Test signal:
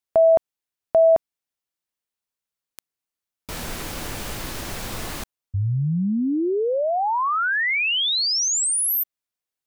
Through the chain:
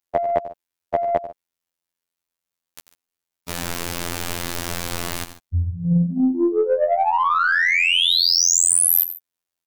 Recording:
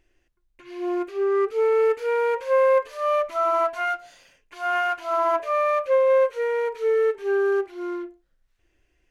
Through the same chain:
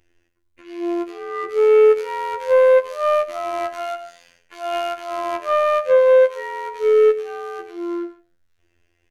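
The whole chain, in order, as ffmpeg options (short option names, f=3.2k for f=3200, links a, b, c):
-af "aecho=1:1:92|142:0.266|0.158,afftfilt=real='hypot(re,im)*cos(PI*b)':imag='0':win_size=2048:overlap=0.75,aeval=exprs='0.335*(cos(1*acos(clip(val(0)/0.335,-1,1)))-cos(1*PI/2))+0.00266*(cos(4*acos(clip(val(0)/0.335,-1,1)))-cos(4*PI/2))+0.00335*(cos(6*acos(clip(val(0)/0.335,-1,1)))-cos(6*PI/2))+0.0133*(cos(7*acos(clip(val(0)/0.335,-1,1)))-cos(7*PI/2))+0.00299*(cos(8*acos(clip(val(0)/0.335,-1,1)))-cos(8*PI/2))':c=same,volume=8dB"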